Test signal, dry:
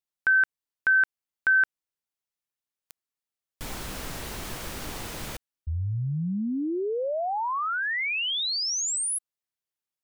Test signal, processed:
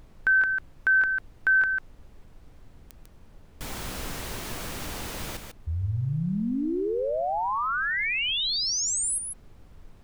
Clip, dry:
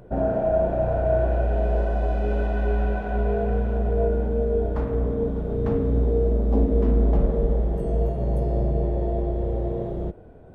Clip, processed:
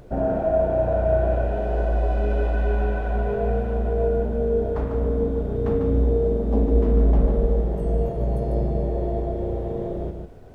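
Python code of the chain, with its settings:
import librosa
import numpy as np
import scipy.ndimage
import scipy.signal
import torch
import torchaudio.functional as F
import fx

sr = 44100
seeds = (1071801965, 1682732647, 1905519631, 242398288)

y = x + 10.0 ** (-6.5 / 20.0) * np.pad(x, (int(147 * sr / 1000.0), 0))[:len(x)]
y = fx.dmg_noise_colour(y, sr, seeds[0], colour='brown', level_db=-48.0)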